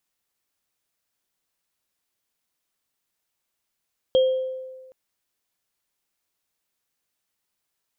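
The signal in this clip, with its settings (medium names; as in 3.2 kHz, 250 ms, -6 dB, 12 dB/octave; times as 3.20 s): sine partials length 0.77 s, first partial 519 Hz, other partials 3.23 kHz, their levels -13 dB, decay 1.40 s, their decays 0.54 s, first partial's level -13 dB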